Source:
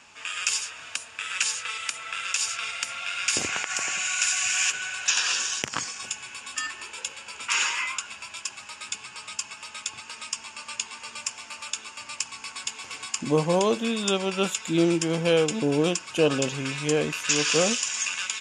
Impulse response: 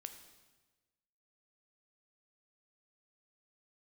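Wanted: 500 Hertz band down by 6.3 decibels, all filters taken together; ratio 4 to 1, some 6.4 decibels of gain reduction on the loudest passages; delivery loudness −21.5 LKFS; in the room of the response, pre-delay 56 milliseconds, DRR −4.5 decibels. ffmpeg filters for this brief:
-filter_complex "[0:a]equalizer=frequency=500:width_type=o:gain=-7.5,acompressor=threshold=-29dB:ratio=4,asplit=2[link_01][link_02];[1:a]atrim=start_sample=2205,adelay=56[link_03];[link_02][link_03]afir=irnorm=-1:irlink=0,volume=9dB[link_04];[link_01][link_04]amix=inputs=2:normalize=0,volume=5dB"

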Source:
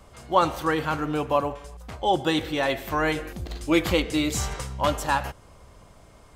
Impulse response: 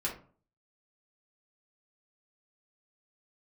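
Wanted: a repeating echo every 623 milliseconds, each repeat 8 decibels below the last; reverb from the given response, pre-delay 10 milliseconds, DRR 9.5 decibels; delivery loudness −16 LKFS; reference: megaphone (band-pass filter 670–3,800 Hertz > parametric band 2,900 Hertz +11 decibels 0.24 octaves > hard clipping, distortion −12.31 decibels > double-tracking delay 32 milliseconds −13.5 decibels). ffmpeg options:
-filter_complex "[0:a]aecho=1:1:623|1246|1869|2492|3115:0.398|0.159|0.0637|0.0255|0.0102,asplit=2[link_01][link_02];[1:a]atrim=start_sample=2205,adelay=10[link_03];[link_02][link_03]afir=irnorm=-1:irlink=0,volume=-13.5dB[link_04];[link_01][link_04]amix=inputs=2:normalize=0,highpass=670,lowpass=3800,equalizer=frequency=2900:width_type=o:width=0.24:gain=11,asoftclip=type=hard:threshold=-19dB,asplit=2[link_05][link_06];[link_06]adelay=32,volume=-13.5dB[link_07];[link_05][link_07]amix=inputs=2:normalize=0,volume=11.5dB"

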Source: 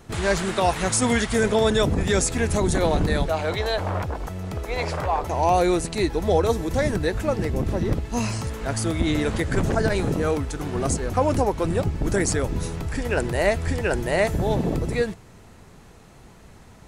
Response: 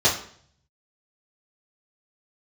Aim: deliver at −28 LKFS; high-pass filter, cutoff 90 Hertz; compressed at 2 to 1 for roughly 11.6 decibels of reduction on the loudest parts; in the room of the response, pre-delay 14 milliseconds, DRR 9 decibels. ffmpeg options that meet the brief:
-filter_complex "[0:a]highpass=90,acompressor=threshold=-38dB:ratio=2,asplit=2[link_01][link_02];[1:a]atrim=start_sample=2205,adelay=14[link_03];[link_02][link_03]afir=irnorm=-1:irlink=0,volume=-26dB[link_04];[link_01][link_04]amix=inputs=2:normalize=0,volume=5dB"

